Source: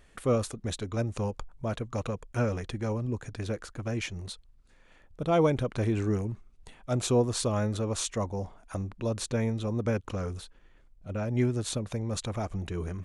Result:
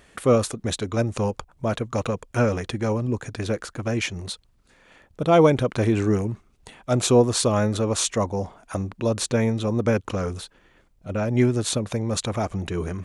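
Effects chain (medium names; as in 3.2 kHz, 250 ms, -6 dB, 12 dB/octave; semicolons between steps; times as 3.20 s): high-pass 120 Hz 6 dB/octave; trim +8.5 dB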